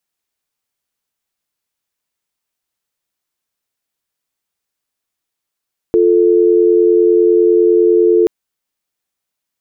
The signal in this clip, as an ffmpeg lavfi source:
-f lavfi -i "aevalsrc='0.316*(sin(2*PI*350*t)+sin(2*PI*440*t))':d=2.33:s=44100"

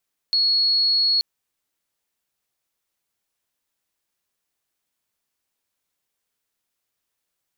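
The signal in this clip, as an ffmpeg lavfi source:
-f lavfi -i "sine=f=4340:d=0.88:r=44100,volume=2.06dB"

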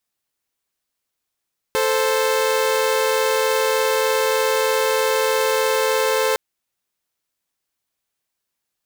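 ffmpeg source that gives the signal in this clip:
-f lavfi -i "aevalsrc='0.141*((2*mod(440*t,1)-1)+(2*mod(523.25*t,1)-1))':d=4.61:s=44100"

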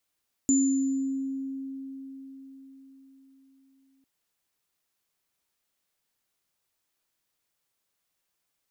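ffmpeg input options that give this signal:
-f lavfi -i "aevalsrc='0.112*pow(10,-3*t/4.78)*sin(2*PI*269*t)+0.075*pow(10,-3*t/1.05)*sin(2*PI*7060*t)':d=3.55:s=44100"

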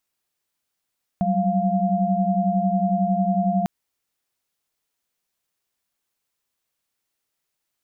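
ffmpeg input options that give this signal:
-f lavfi -i "aevalsrc='0.075*(sin(2*PI*185*t)+sin(2*PI*196*t)+sin(2*PI*698.46*t))':d=2.45:s=44100"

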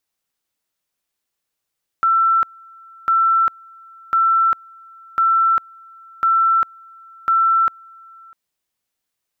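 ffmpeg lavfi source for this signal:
-f lavfi -i "aevalsrc='pow(10,(-12-28*gte(mod(t,1.05),0.4))/20)*sin(2*PI*1340*t)':d=6.3:s=44100"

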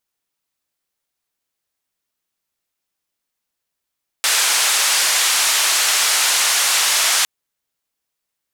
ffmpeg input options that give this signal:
-f lavfi -i "anoisesrc=c=white:d=3.01:r=44100:seed=1,highpass=f=890,lowpass=f=9000,volume=-7.4dB"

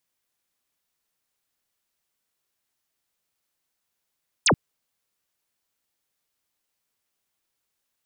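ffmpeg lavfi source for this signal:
-f lavfi -i "aevalsrc='0.178*clip(t/0.002,0,1)*clip((0.08-t)/0.002,0,1)*sin(2*PI*9600*0.08/log(91/9600)*(exp(log(91/9600)*t/0.08)-1))':d=0.08:s=44100"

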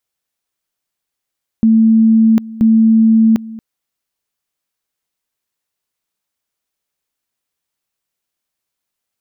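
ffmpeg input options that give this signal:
-f lavfi -i "aevalsrc='pow(10,(-6-19.5*gte(mod(t,0.98),0.75))/20)*sin(2*PI*223*t)':d=1.96:s=44100"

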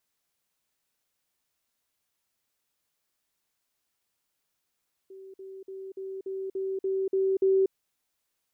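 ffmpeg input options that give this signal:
-f lavfi -i "aevalsrc='pow(10,(-43+3*floor(t/0.29))/20)*sin(2*PI*384*t)*clip(min(mod(t,0.29),0.24-mod(t,0.29))/0.005,0,1)':d=2.61:s=44100"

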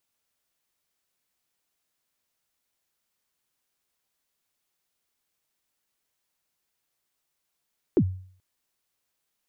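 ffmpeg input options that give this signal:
-f lavfi -i "aevalsrc='0.211*pow(10,-3*t/0.52)*sin(2*PI*(430*0.065/log(93/430)*(exp(log(93/430)*min(t,0.065)/0.065)-1)+93*max(t-0.065,0)))':d=0.43:s=44100"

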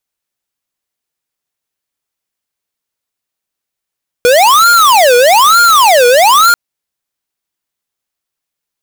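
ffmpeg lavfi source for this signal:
-f lavfi -i "aevalsrc='0.501*(2*lt(mod((946.5*t-463.5/(2*PI*1.1)*sin(2*PI*1.1*t)),1),0.5)-1)':d=2.29:s=44100"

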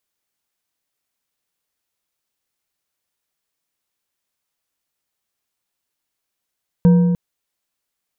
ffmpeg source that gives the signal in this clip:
-f lavfi -i "aevalsrc='0.473*pow(10,-3*t/1.97)*sin(2*PI*175*t)+0.119*pow(10,-3*t/1.453)*sin(2*PI*482.5*t)+0.0299*pow(10,-3*t/1.188)*sin(2*PI*945.7*t)+0.0075*pow(10,-3*t/1.021)*sin(2*PI*1563.3*t)':d=0.3:s=44100"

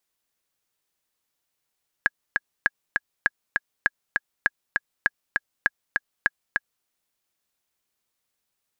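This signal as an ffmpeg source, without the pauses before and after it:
-f lavfi -i "aevalsrc='pow(10,(-5.5-3*gte(mod(t,2*60/200),60/200))/20)*sin(2*PI*1660*mod(t,60/200))*exp(-6.91*mod(t,60/200)/0.03)':d=4.8:s=44100"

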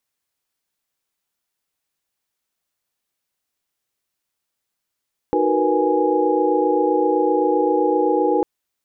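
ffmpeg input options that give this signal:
-f lavfi -i "aevalsrc='0.0841*(sin(2*PI*311.13*t)+sin(2*PI*369.99*t)+sin(2*PI*466.16*t)+sin(2*PI*493.88*t)+sin(2*PI*830.61*t))':d=3.1:s=44100"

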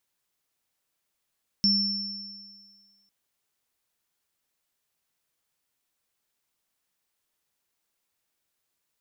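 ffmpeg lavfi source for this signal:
-f lavfi -i "aevalsrc='0.0708*pow(10,-3*t/1.56)*sin(2*PI*200*t)+0.119*pow(10,-3*t/1.84)*sin(2*PI*5390*t)':d=1.45:s=44100"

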